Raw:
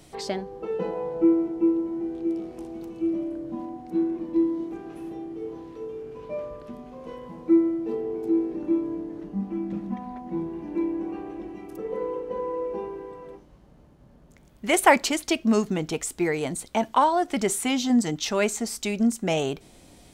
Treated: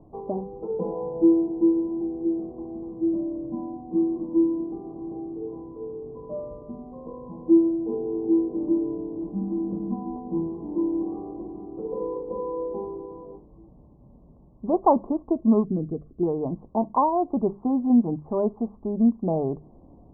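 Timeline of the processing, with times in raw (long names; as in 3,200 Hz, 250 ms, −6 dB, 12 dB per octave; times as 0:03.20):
0:07.60–0:08.40: delay throw 440 ms, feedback 80%, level −10.5 dB
0:15.64–0:16.23: phaser with its sweep stopped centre 2,200 Hz, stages 4
whole clip: Chebyshev low-pass filter 1,100 Hz, order 6; low-shelf EQ 390 Hz +6.5 dB; mains-hum notches 50/100/150/200 Hz; level −2 dB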